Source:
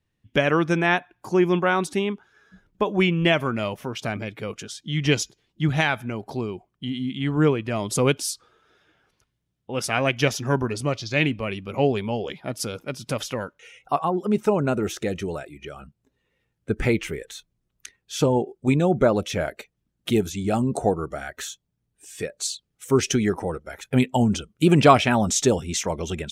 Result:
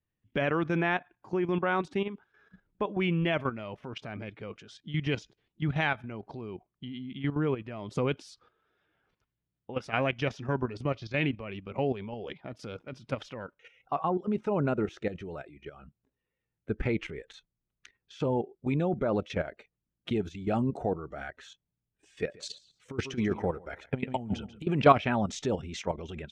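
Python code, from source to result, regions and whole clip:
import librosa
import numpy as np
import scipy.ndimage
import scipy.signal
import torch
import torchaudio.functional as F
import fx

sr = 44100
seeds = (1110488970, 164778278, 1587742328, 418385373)

y = fx.chain(x, sr, fx.echo_feedback(ms=141, feedback_pct=21, wet_db=-17),
    fx.over_compress(threshold_db=-22.0, ratio=-0.5), at=(22.16, 24.67))
y = scipy.signal.sosfilt(scipy.signal.butter(2, 3100.0, 'lowpass', fs=sr, output='sos'), y)
y = fx.level_steps(y, sr, step_db=12)
y = F.gain(torch.from_numpy(y), -3.0).numpy()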